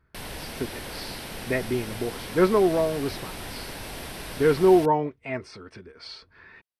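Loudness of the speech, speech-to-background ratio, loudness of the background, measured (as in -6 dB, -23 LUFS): -24.0 LUFS, 13.0 dB, -37.0 LUFS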